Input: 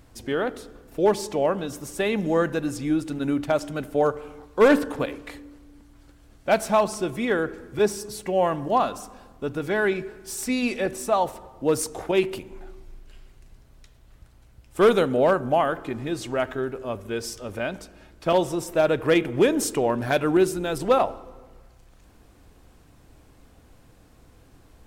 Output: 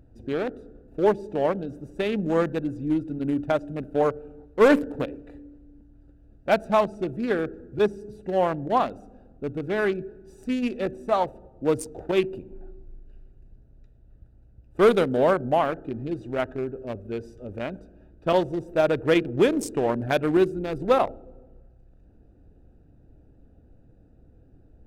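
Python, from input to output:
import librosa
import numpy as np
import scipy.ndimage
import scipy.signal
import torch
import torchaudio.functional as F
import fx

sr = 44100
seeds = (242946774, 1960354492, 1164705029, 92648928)

y = fx.wiener(x, sr, points=41)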